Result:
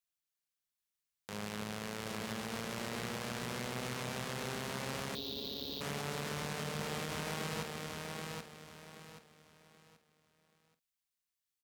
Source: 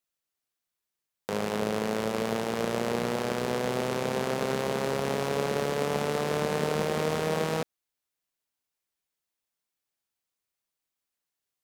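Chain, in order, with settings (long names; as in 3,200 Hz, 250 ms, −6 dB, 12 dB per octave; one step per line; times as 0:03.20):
parametric band 470 Hz −11.5 dB 2.2 octaves
double-tracking delay 48 ms −12 dB
repeating echo 779 ms, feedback 31%, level −4 dB
brickwall limiter −18.5 dBFS, peak gain reduction 5 dB
0:05.15–0:05.81: drawn EQ curve 100 Hz 0 dB, 150 Hz −16 dB, 270 Hz +4 dB, 1,400 Hz −20 dB, 2,200 Hz −19 dB, 3,800 Hz +11 dB, 10,000 Hz −29 dB, 16,000 Hz +13 dB
level −4.5 dB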